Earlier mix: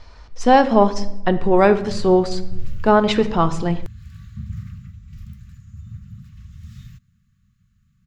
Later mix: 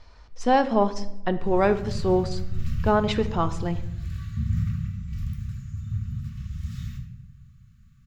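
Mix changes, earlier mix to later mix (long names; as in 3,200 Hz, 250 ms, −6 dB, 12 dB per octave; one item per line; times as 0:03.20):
speech −7.0 dB
background: send on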